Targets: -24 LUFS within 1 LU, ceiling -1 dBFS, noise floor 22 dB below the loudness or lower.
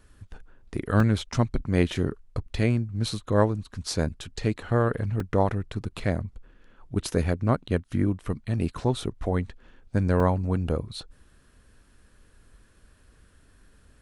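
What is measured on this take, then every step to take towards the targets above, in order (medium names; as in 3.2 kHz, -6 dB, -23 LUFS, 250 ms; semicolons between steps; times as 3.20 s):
dropouts 3; longest dropout 2.4 ms; loudness -27.0 LUFS; peak level -6.5 dBFS; loudness target -24.0 LUFS
-> interpolate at 1.00/5.20/10.20 s, 2.4 ms; trim +3 dB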